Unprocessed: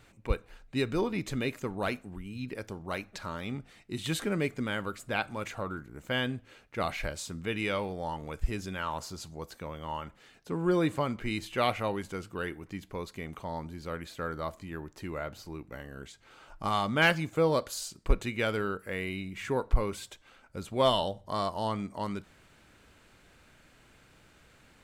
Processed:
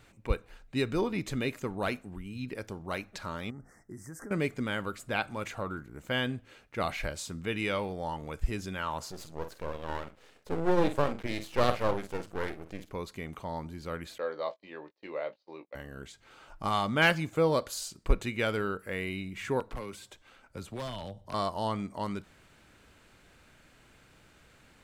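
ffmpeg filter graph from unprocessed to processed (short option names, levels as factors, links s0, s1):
-filter_complex "[0:a]asettb=1/sr,asplit=3[s0][s1][s2];[s0]atrim=end=3.504[s3];[s1]atrim=start=3.5:end=4.31,asetpts=PTS-STARTPTS,afade=t=in:d=0.004:c=qsin,afade=t=out:st=0.806:d=0.004:c=qsin,acompressor=threshold=0.01:ratio=6:attack=3.2:release=140:knee=1:detection=peak,asuperstop=centerf=3200:order=12:qfactor=0.96[s4];[s2]atrim=start=4.306[s5];[s3][s4]acrossfade=d=0.004:c1=hsin:c2=qsin[s6];[s6][s5]acrossfade=d=0.004:c1=qsin:c2=hsin,asettb=1/sr,asplit=3[s7][s8][s9];[s7]atrim=end=9.114[s10];[s8]atrim=start=9.11:end=12.91,asetpts=PTS-STARTPTS,afade=t=in:d=0.004:c=qsin,afade=t=out:st=3.796:d=0.004:c=qsin,equalizer=f=510:t=o:w=0.92:g=9.5,asplit=2[s11][s12];[s12]adelay=49,volume=0.316[s13];[s11][s13]amix=inputs=2:normalize=0,atrim=end_sample=167580,aeval=exprs='max(val(0),0)':c=same[s14];[s9]atrim=start=12.906[s15];[s10][s14]acrossfade=d=0.004:c1=hsin:c2=qsin[s16];[s16][s15]acrossfade=d=0.004:c1=qsin:c2=hsin,asettb=1/sr,asplit=3[s17][s18][s19];[s17]atrim=end=14.184[s20];[s18]atrim=start=14.18:end=15.75,asetpts=PTS-STARTPTS,afade=t=in:d=0.004:c=qsin,afade=t=out:st=1.566:d=0.004:c=qsin,agate=range=0.0316:threshold=0.00562:ratio=16:release=100:detection=peak,highpass=440,equalizer=f=530:t=q:w=4:g=8,equalizer=f=1400:t=q:w=4:g=-9,equalizer=f=4100:t=q:w=4:g=5,lowpass=f=4800:w=0.5412,lowpass=f=4800:w=1.3066,asplit=2[s21][s22];[s22]adelay=20,volume=0.355[s23];[s21][s23]amix=inputs=2:normalize=0,atrim=end_sample=69237[s24];[s19]atrim=start=15.746[s25];[s20][s24]acrossfade=d=0.004:c1=hsin:c2=qsin[s26];[s26][s25]acrossfade=d=0.004:c1=qsin:c2=hsin,asettb=1/sr,asplit=3[s27][s28][s29];[s27]atrim=end=19.604[s30];[s28]atrim=start=19.6:end=21.34,asetpts=PTS-STARTPTS,afade=t=in:d=0.004:c=qsin,afade=t=out:st=1.736:d=0.004:c=qsin,acrossover=split=120|270|1600[s31][s32][s33][s34];[s31]acompressor=threshold=0.00794:ratio=3[s35];[s32]acompressor=threshold=0.00501:ratio=3[s36];[s33]acompressor=threshold=0.00794:ratio=3[s37];[s34]acompressor=threshold=0.00355:ratio=3[s38];[s35][s36][s37][s38]amix=inputs=4:normalize=0,aeval=exprs='0.0299*(abs(mod(val(0)/0.0299+3,4)-2)-1)':c=same[s39];[s29]atrim=start=21.336[s40];[s30][s39]acrossfade=d=0.004:c1=hsin:c2=qsin[s41];[s41][s40]acrossfade=d=0.004:c1=qsin:c2=hsin"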